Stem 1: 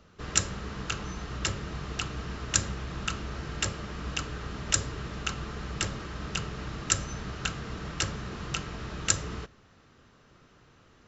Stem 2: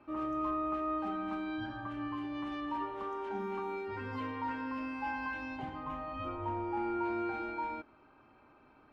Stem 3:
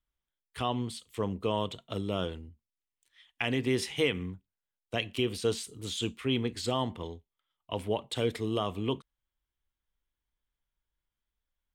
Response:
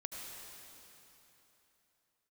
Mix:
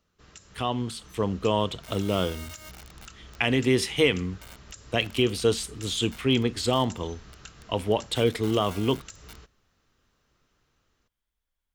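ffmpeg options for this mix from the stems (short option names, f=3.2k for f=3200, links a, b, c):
-filter_complex "[0:a]asubboost=boost=2:cutoff=72,volume=-17dB[a];[1:a]highshelf=f=4.5k:g=-5,acrusher=bits=4:mix=0:aa=0.000001,aecho=1:1:1.4:0.65,adelay=1700,volume=-17.5dB[b];[2:a]volume=2.5dB[c];[a][b]amix=inputs=2:normalize=0,highshelf=f=3.8k:g=9,alimiter=level_in=9dB:limit=-24dB:level=0:latency=1:release=151,volume=-9dB,volume=0dB[d];[c][d]amix=inputs=2:normalize=0,dynaudnorm=f=240:g=9:m=4dB"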